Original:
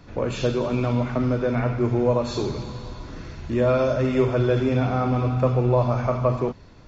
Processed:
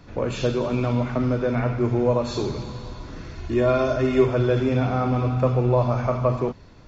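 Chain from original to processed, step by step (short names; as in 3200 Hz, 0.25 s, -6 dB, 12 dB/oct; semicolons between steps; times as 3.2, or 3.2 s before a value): 3.35–4.26 comb 2.8 ms, depth 57%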